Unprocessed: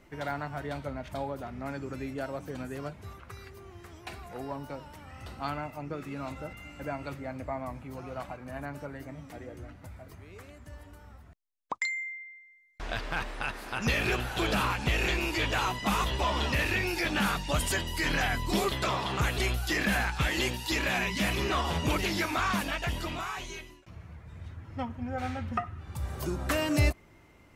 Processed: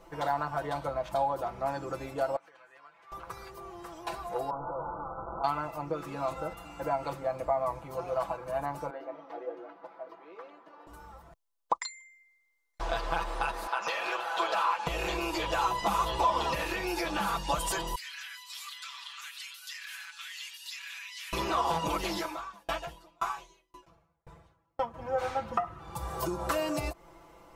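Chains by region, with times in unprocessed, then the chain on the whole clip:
2.36–3.12 compressor, threshold -42 dBFS + band-pass 2000 Hz, Q 1.9
4.5–5.44 infinite clipping + brick-wall FIR low-pass 1500 Hz
8.9–10.87 HPF 280 Hz 24 dB/oct + air absorption 300 m
13.67–14.87 HPF 700 Hz + bell 13000 Hz -13.5 dB 1.6 oct
17.95–21.33 Bessel high-pass 2800 Hz, order 6 + high shelf 4100 Hz -9.5 dB + compressor 2:1, threshold -42 dBFS
22.16–24.94 doubler 13 ms -11 dB + dB-ramp tremolo decaying 1.9 Hz, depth 38 dB
whole clip: comb 6 ms, depth 87%; compressor, threshold -29 dBFS; graphic EQ 125/250/500/1000/2000 Hz -7/-5/+4/+8/-7 dB; gain +1 dB

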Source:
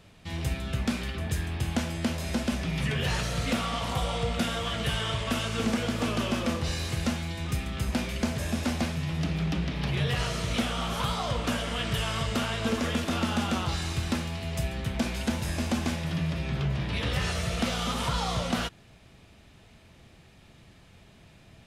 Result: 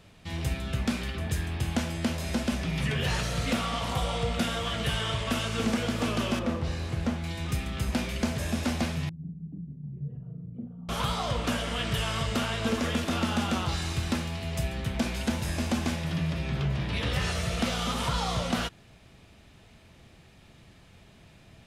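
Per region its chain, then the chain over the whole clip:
6.39–7.24 high shelf 2300 Hz -11 dB + Doppler distortion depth 0.19 ms
9.09–10.89 formant sharpening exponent 2 + ladder band-pass 180 Hz, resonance 35% + doubler 41 ms -5.5 dB
whole clip: dry

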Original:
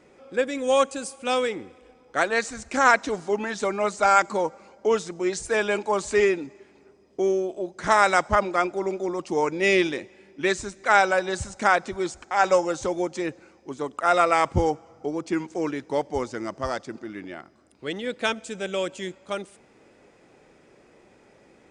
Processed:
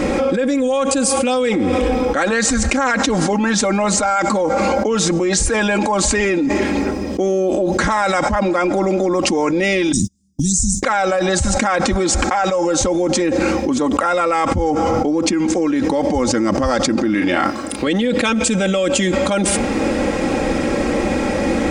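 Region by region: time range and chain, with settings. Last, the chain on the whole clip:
9.92–10.83 elliptic band-stop 170–6400 Hz, stop band 50 dB + high shelf 4400 Hz +7 dB + gate -56 dBFS, range -36 dB
17.14–17.87 low shelf 320 Hz -9.5 dB + doubler 34 ms -7 dB
whole clip: low shelf 280 Hz +8.5 dB; comb 3.7 ms, depth 65%; fast leveller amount 100%; gain -7 dB

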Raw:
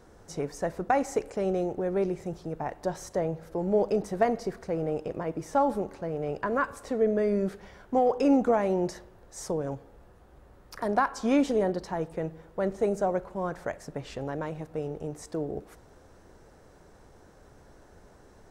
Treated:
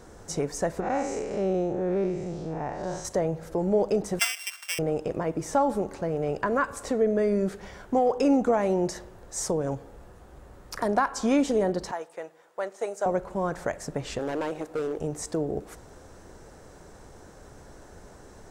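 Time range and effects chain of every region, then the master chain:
0.8–3.05 time blur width 0.15 s + LPF 6400 Hz
4.19–4.79 sample sorter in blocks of 16 samples + HPF 1200 Hz 24 dB/oct
11.91–13.06 HPF 650 Hz + upward expander, over -41 dBFS
14.19–14.99 resonant low shelf 220 Hz -11 dB, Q 1.5 + hard clip -30 dBFS
whole clip: bell 7500 Hz +5.5 dB 0.78 oct; compressor 1.5:1, threshold -34 dBFS; gain +6 dB

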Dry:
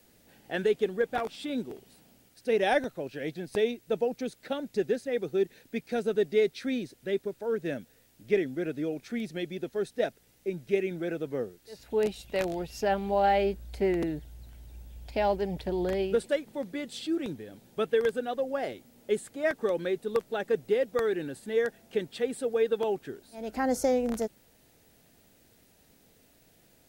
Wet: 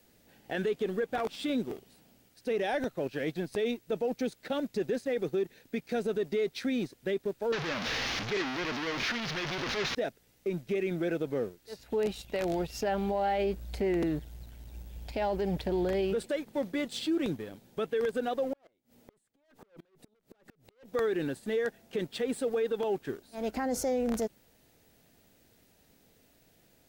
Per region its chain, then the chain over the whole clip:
7.52–9.95 delta modulation 32 kbps, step -25 dBFS + expander -26 dBFS + bell 2100 Hz +8.5 dB 2.7 oct
18.53–20.92 tube stage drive 35 dB, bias 0.35 + compressor 12:1, threshold -43 dBFS + flipped gate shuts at -41 dBFS, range -26 dB
whole clip: bell 10000 Hz -3 dB 0.77 oct; sample leveller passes 1; limiter -23 dBFS

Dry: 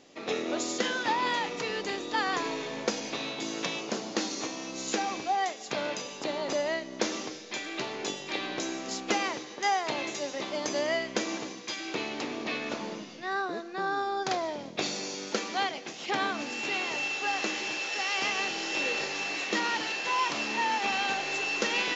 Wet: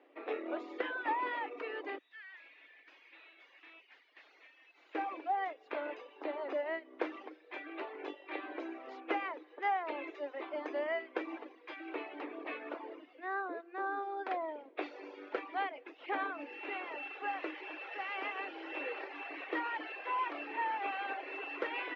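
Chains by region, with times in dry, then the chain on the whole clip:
1.98–4.95 steep high-pass 1700 Hz 72 dB/oct + tube stage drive 41 dB, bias 0.7
whole clip: elliptic high-pass 290 Hz, stop band 40 dB; reverb removal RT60 0.87 s; LPF 2400 Hz 24 dB/oct; gain -4.5 dB

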